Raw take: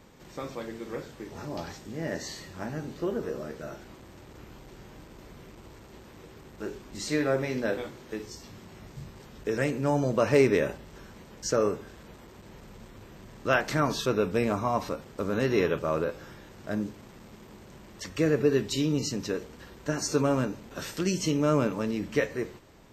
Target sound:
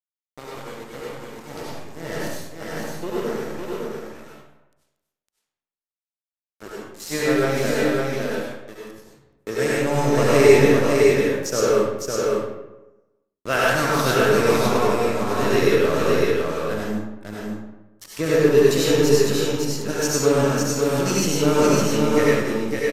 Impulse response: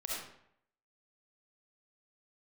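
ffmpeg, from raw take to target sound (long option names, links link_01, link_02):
-filter_complex "[0:a]aeval=exprs='sgn(val(0))*max(abs(val(0))-0.0158,0)':channel_layout=same,aemphasis=mode=production:type=cd,aecho=1:1:557:0.668[link_01];[1:a]atrim=start_sample=2205,asetrate=30429,aresample=44100[link_02];[link_01][link_02]afir=irnorm=-1:irlink=0,aresample=32000,aresample=44100,volume=4dB"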